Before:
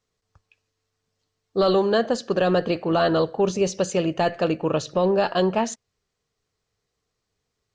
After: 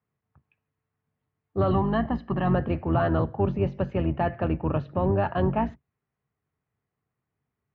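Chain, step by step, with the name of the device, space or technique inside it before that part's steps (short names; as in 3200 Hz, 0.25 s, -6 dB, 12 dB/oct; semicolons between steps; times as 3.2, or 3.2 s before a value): 1.71–2.54 comb 1 ms, depth 67%; sub-octave bass pedal (octaver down 2 oct, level +3 dB; speaker cabinet 69–2300 Hz, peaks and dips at 140 Hz +8 dB, 230 Hz +3 dB, 480 Hz -6 dB, 880 Hz +3 dB); gain -4.5 dB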